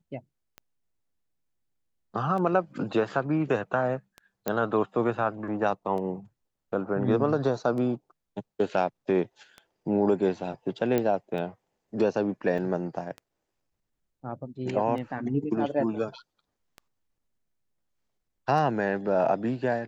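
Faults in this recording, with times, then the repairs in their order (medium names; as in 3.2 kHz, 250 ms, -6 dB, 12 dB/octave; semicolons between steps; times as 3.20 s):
tick 33 1/3 rpm -26 dBFS
4.48 s: pop -13 dBFS
10.98 s: pop -13 dBFS
12.58 s: dropout 4.9 ms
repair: de-click; interpolate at 12.58 s, 4.9 ms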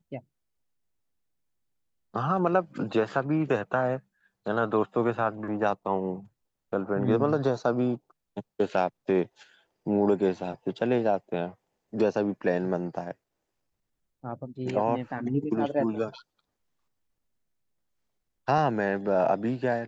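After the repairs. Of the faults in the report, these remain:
nothing left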